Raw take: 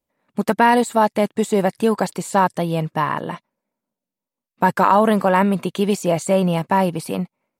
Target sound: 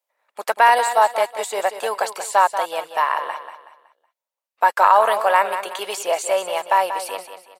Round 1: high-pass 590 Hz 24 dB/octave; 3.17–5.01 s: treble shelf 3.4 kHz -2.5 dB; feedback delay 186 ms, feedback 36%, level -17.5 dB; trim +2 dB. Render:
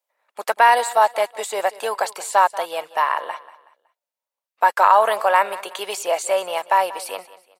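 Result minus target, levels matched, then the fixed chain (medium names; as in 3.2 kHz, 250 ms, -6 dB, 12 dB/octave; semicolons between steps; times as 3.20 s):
echo-to-direct -7.5 dB
high-pass 590 Hz 24 dB/octave; 3.17–5.01 s: treble shelf 3.4 kHz -2.5 dB; feedback delay 186 ms, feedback 36%, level -10 dB; trim +2 dB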